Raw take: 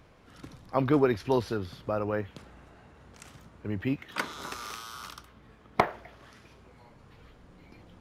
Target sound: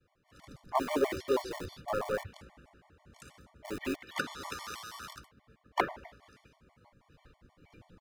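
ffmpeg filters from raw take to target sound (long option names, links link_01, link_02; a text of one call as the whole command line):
ffmpeg -i in.wav -filter_complex "[0:a]bandreject=frequency=379.4:width_type=h:width=4,bandreject=frequency=758.8:width_type=h:width=4,bandreject=frequency=1138.2:width_type=h:width=4,bandreject=frequency=1517.6:width_type=h:width=4,bandreject=frequency=1897:width_type=h:width=4,agate=range=-33dB:threshold=-48dB:ratio=3:detection=peak,asplit=4[link_01][link_02][link_03][link_04];[link_02]asetrate=33038,aresample=44100,atempo=1.33484,volume=-15dB[link_05];[link_03]asetrate=37084,aresample=44100,atempo=1.18921,volume=-16dB[link_06];[link_04]asetrate=58866,aresample=44100,atempo=0.749154,volume=-9dB[link_07];[link_01][link_05][link_06][link_07]amix=inputs=4:normalize=0,acrossover=split=280|1900[link_08][link_09][link_10];[link_08]aeval=exprs='(mod(53.1*val(0)+1,2)-1)/53.1':channel_layout=same[link_11];[link_11][link_09][link_10]amix=inputs=3:normalize=0,afftfilt=real='re*gt(sin(2*PI*6.2*pts/sr)*(1-2*mod(floor(b*sr/1024/590),2)),0)':imag='im*gt(sin(2*PI*6.2*pts/sr)*(1-2*mod(floor(b*sr/1024/590),2)),0)':win_size=1024:overlap=0.75" out.wav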